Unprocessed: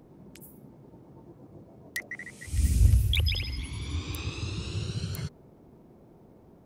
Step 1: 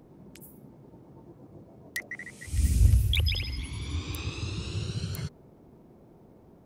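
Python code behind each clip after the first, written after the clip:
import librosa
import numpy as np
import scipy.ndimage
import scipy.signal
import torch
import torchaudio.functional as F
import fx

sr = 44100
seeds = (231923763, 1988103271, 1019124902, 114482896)

y = x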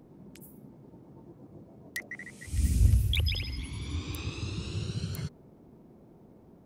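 y = fx.peak_eq(x, sr, hz=220.0, db=3.5, octaves=1.3)
y = y * librosa.db_to_amplitude(-2.5)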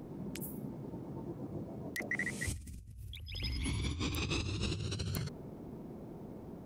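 y = fx.over_compress(x, sr, threshold_db=-40.0, ratio=-1.0)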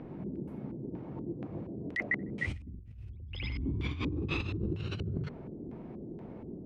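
y = fx.filter_lfo_lowpass(x, sr, shape='square', hz=2.1, low_hz=370.0, high_hz=2400.0, q=1.6)
y = y * librosa.db_to_amplitude(2.0)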